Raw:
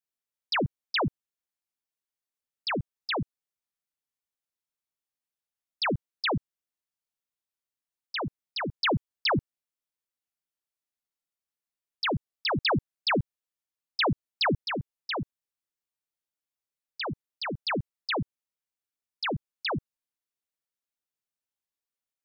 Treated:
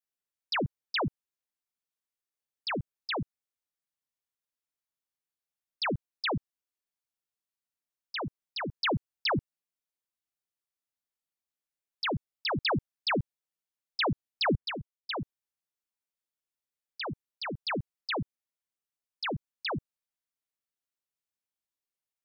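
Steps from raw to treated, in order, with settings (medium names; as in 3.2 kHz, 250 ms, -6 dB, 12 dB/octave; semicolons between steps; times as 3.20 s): 14.47–15.13 s: three bands expanded up and down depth 100%; trim -3 dB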